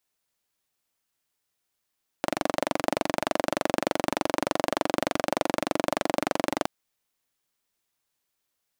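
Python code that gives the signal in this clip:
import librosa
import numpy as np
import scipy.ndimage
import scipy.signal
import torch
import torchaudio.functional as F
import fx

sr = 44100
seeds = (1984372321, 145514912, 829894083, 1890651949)

y = fx.engine_single(sr, seeds[0], length_s=4.42, rpm=2800, resonances_hz=(310.0, 580.0))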